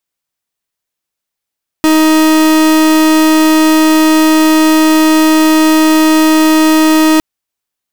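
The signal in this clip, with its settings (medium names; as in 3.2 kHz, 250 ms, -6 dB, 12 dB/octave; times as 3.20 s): pulse 314 Hz, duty 42% -7.5 dBFS 5.36 s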